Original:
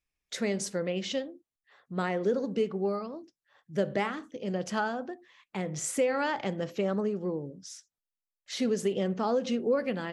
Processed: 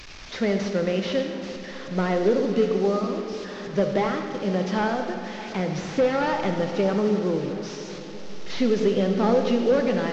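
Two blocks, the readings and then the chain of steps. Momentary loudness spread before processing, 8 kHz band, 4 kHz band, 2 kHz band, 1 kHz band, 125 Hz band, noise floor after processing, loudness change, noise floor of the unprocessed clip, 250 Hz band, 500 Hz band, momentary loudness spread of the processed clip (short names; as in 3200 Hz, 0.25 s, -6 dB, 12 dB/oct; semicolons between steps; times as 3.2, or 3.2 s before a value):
13 LU, -4.0 dB, +5.5 dB, +5.0 dB, +6.5 dB, +8.0 dB, -37 dBFS, +7.0 dB, under -85 dBFS, +8.0 dB, +7.5 dB, 13 LU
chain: delta modulation 32 kbps, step -42.5 dBFS; diffused feedback echo 0.64 s, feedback 47%, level -14.5 dB; digital reverb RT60 2 s, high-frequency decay 0.65×, pre-delay 25 ms, DRR 5.5 dB; gain +6.5 dB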